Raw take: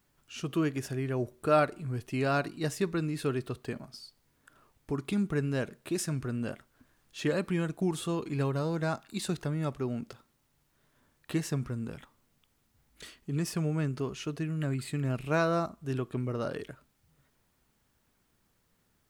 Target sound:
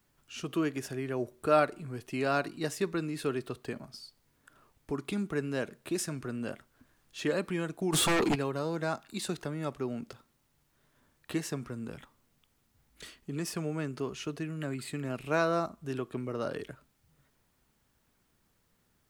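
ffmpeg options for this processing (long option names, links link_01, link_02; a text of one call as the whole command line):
ffmpeg -i in.wav -filter_complex "[0:a]acrossover=split=210[link_01][link_02];[link_01]acompressor=threshold=-44dB:ratio=6[link_03];[link_03][link_02]amix=inputs=2:normalize=0,asplit=3[link_04][link_05][link_06];[link_04]afade=type=out:start_time=7.92:duration=0.02[link_07];[link_05]aeval=exprs='0.075*sin(PI/2*3.98*val(0)/0.075)':channel_layout=same,afade=type=in:start_time=7.92:duration=0.02,afade=type=out:start_time=8.34:duration=0.02[link_08];[link_06]afade=type=in:start_time=8.34:duration=0.02[link_09];[link_07][link_08][link_09]amix=inputs=3:normalize=0" out.wav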